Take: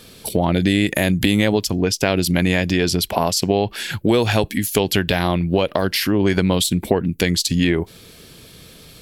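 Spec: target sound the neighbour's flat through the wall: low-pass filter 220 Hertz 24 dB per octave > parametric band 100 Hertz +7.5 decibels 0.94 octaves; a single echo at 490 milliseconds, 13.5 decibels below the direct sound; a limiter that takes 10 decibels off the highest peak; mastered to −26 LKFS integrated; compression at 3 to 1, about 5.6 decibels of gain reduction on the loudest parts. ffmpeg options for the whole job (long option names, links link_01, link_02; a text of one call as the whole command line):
ffmpeg -i in.wav -af "acompressor=threshold=-21dB:ratio=3,alimiter=limit=-14.5dB:level=0:latency=1,lowpass=frequency=220:width=0.5412,lowpass=frequency=220:width=1.3066,equalizer=frequency=100:width_type=o:width=0.94:gain=7.5,aecho=1:1:490:0.211,volume=1dB" out.wav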